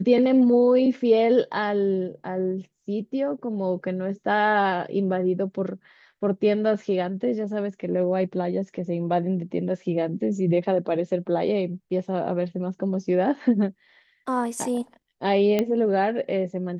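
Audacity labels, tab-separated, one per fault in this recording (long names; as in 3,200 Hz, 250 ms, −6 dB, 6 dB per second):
15.590000	15.590000	click −10 dBFS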